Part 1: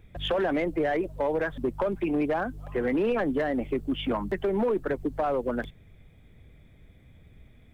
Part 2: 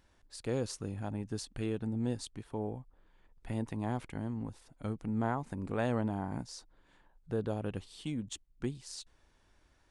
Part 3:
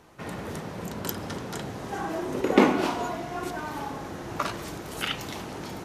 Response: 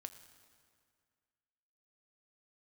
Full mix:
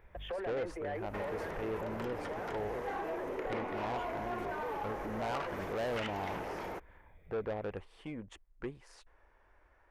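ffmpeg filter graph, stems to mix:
-filter_complex "[0:a]alimiter=level_in=2.5dB:limit=-24dB:level=0:latency=1,volume=-2.5dB,volume=-5dB[a];[1:a]highshelf=f=3k:g=-10.5,volume=2dB[b];[2:a]acrossover=split=5300[c][d];[d]acompressor=threshold=-53dB:ratio=4:attack=1:release=60[e];[c][e]amix=inputs=2:normalize=0,adelay=950,volume=1.5dB[f];[a][f]amix=inputs=2:normalize=0,equalizer=f=1.4k:w=0.81:g=-5,acompressor=threshold=-36dB:ratio=3,volume=0dB[g];[b][g]amix=inputs=2:normalize=0,equalizer=f=125:t=o:w=1:g=-10,equalizer=f=250:t=o:w=1:g=-8,equalizer=f=500:t=o:w=1:g=5,equalizer=f=1k:t=o:w=1:g=4,equalizer=f=2k:t=o:w=1:g=7,equalizer=f=4k:t=o:w=1:g=-10,equalizer=f=8k:t=o:w=1:g=-9,asoftclip=type=tanh:threshold=-31dB"

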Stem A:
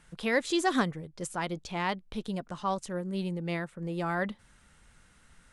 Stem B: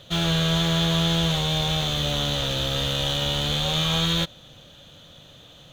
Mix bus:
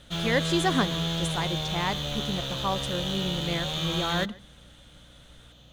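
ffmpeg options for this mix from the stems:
-filter_complex "[0:a]volume=1.5dB,asplit=2[a][b];[b]volume=-23dB[c];[1:a]aeval=exprs='val(0)+0.00447*(sin(2*PI*60*n/s)+sin(2*PI*2*60*n/s)/2+sin(2*PI*3*60*n/s)/3+sin(2*PI*4*60*n/s)/4+sin(2*PI*5*60*n/s)/5)':c=same,volume=-7dB[d];[c]aecho=0:1:137:1[e];[a][d][e]amix=inputs=3:normalize=0"

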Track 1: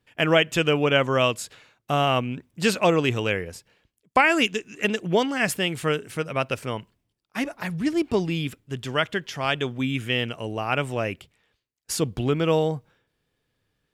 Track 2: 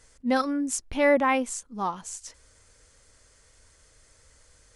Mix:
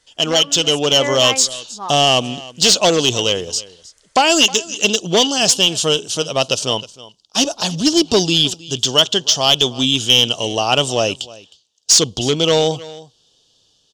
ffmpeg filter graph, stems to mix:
-filter_complex "[0:a]firequalizer=gain_entry='entry(750,0);entry(2100,-23);entry(3000,8)':delay=0.05:min_phase=1,volume=15.5dB,asoftclip=hard,volume=-15.5dB,lowpass=f=6.3k:t=q:w=2.7,volume=1.5dB,asplit=2[a][b];[b]volume=-20.5dB[c];[1:a]volume=-8.5dB[d];[c]aecho=0:1:313:1[e];[a][d][e]amix=inputs=3:normalize=0,highshelf=f=9.9k:g=2.5,dynaudnorm=f=360:g=5:m=11.5dB,asplit=2[f][g];[g]highpass=f=720:p=1,volume=10dB,asoftclip=type=tanh:threshold=-0.5dB[h];[f][h]amix=inputs=2:normalize=0,lowpass=f=5.9k:p=1,volume=-6dB"

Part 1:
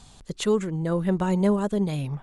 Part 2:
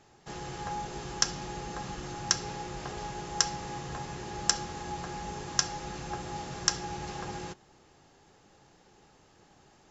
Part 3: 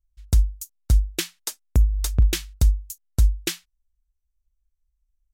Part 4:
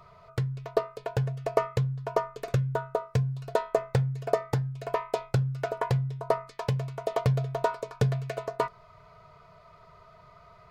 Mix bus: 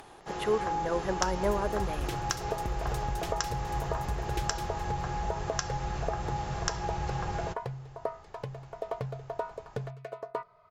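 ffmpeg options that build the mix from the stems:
-filter_complex "[0:a]acrossover=split=400 2600:gain=0.141 1 0.112[a][b][c];[a][b][c]amix=inputs=3:normalize=0,aexciter=amount=4:drive=9.6:freq=10k,volume=-0.5dB[d];[1:a]asubboost=boost=11.5:cutoff=80,volume=-4dB[e];[2:a]adelay=900,volume=-18dB,asplit=2[f][g];[g]volume=-3dB[h];[3:a]adelay=1750,volume=-16dB[i];[e][f][i]amix=inputs=3:normalize=0,equalizer=f=700:w=0.3:g=10.5,acompressor=threshold=-27dB:ratio=5,volume=0dB[j];[h]aecho=0:1:210|420|630|840:1|0.31|0.0961|0.0298[k];[d][j][k]amix=inputs=3:normalize=0,acompressor=mode=upward:threshold=-46dB:ratio=2.5"

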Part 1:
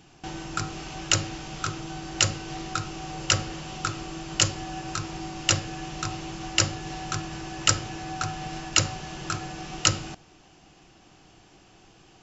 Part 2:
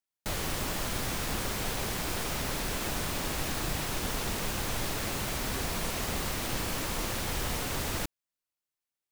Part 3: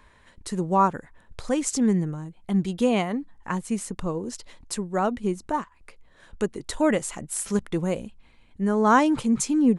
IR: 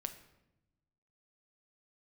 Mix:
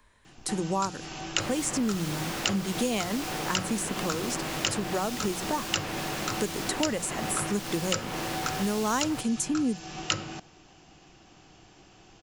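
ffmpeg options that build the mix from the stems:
-filter_complex "[0:a]adelay=250,volume=0dB[a];[1:a]highshelf=f=5.9k:g=-6.5,adelay=1150,volume=1.5dB[b];[2:a]bandreject=f=60:t=h:w=6,bandreject=f=120:t=h:w=6,bandreject=f=180:t=h:w=6,agate=range=-9dB:threshold=-49dB:ratio=16:detection=peak,bass=f=250:g=1,treble=f=4k:g=7,volume=2dB[c];[a][b][c]amix=inputs=3:normalize=0,acrossover=split=130|3200[d][e][f];[d]acompressor=threshold=-50dB:ratio=4[g];[e]acompressor=threshold=-27dB:ratio=4[h];[f]acompressor=threshold=-32dB:ratio=4[i];[g][h][i]amix=inputs=3:normalize=0"

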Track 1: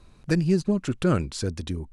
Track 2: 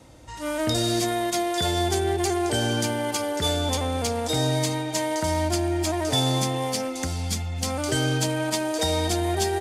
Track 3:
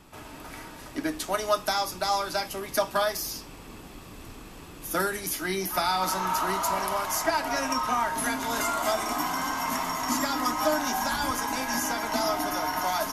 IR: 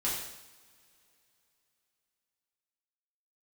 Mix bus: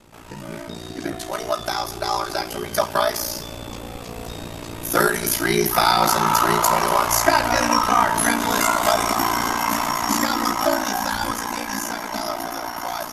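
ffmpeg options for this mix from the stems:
-filter_complex "[0:a]volume=-13dB[a];[1:a]acrossover=split=7800[b][c];[c]acompressor=threshold=-49dB:ratio=4:attack=1:release=60[d];[b][d]amix=inputs=2:normalize=0,alimiter=limit=-23.5dB:level=0:latency=1,volume=-1.5dB[e];[2:a]dynaudnorm=f=460:g=13:m=11.5dB,volume=1dB,asplit=2[f][g];[g]volume=-14.5dB[h];[3:a]atrim=start_sample=2205[i];[h][i]afir=irnorm=-1:irlink=0[j];[a][e][f][j]amix=inputs=4:normalize=0,aeval=exprs='val(0)*sin(2*PI*29*n/s)':c=same"

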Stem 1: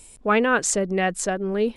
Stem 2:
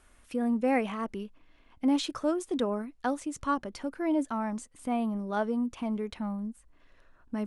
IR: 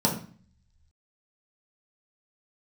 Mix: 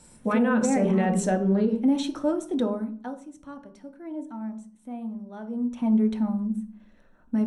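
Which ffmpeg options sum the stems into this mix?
-filter_complex "[0:a]alimiter=limit=-16dB:level=0:latency=1:release=156,volume=-6.5dB,asplit=2[a][b];[b]volume=-9.5dB[c];[1:a]volume=9.5dB,afade=t=out:st=2.58:d=0.58:silence=0.237137,afade=t=in:st=5.47:d=0.41:silence=0.223872,asplit=3[d][e][f];[e]volume=-13dB[g];[f]apad=whole_len=77685[h];[a][h]sidechaingate=range=-33dB:threshold=-57dB:ratio=16:detection=peak[i];[2:a]atrim=start_sample=2205[j];[c][g]amix=inputs=2:normalize=0[k];[k][j]afir=irnorm=-1:irlink=0[l];[i][d][l]amix=inputs=3:normalize=0,alimiter=limit=-14dB:level=0:latency=1:release=93"

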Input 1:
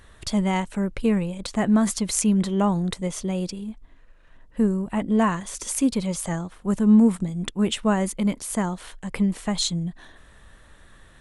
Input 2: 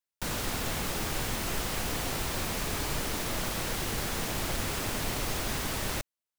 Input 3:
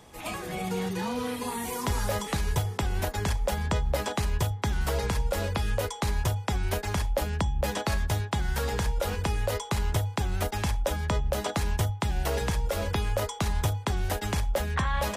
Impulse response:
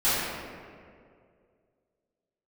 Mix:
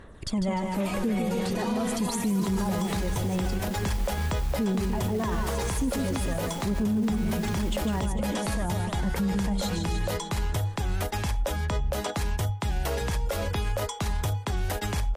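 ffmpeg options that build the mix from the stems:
-filter_complex "[0:a]equalizer=f=340:w=0.33:g=10,alimiter=limit=-11dB:level=0:latency=1,aphaser=in_gain=1:out_gain=1:delay=4.2:decay=0.59:speed=0.44:type=sinusoidal,volume=-8dB,asplit=2[a][b];[b]volume=-6dB[c];[1:a]asoftclip=type=tanh:threshold=-28dB,adelay=2050,volume=-7dB,asplit=2[d][e];[e]volume=-19dB[f];[2:a]adelay=600,volume=2dB[g];[c][f]amix=inputs=2:normalize=0,aecho=0:1:150|300|450|600|750|900|1050|1200|1350:1|0.59|0.348|0.205|0.121|0.0715|0.0422|0.0249|0.0147[h];[a][d][g][h]amix=inputs=4:normalize=0,alimiter=limit=-19.5dB:level=0:latency=1:release=57"

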